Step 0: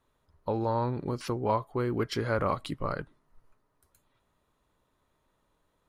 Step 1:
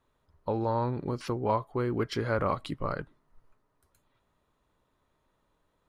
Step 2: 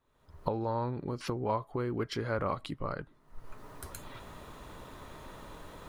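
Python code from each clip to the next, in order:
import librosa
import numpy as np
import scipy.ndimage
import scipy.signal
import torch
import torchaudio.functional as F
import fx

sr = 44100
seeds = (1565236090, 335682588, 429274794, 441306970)

y1 = fx.high_shelf(x, sr, hz=6800.0, db=-6.5)
y2 = fx.recorder_agc(y1, sr, target_db=-24.5, rise_db_per_s=46.0, max_gain_db=30)
y2 = y2 * 10.0 ** (-4.0 / 20.0)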